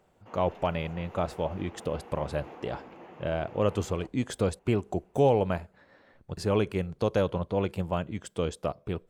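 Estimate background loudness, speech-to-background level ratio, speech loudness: −48.5 LKFS, 18.0 dB, −30.5 LKFS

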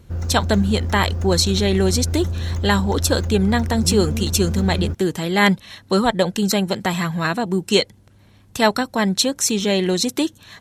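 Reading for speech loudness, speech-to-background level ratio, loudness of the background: −20.0 LKFS, 5.0 dB, −25.0 LKFS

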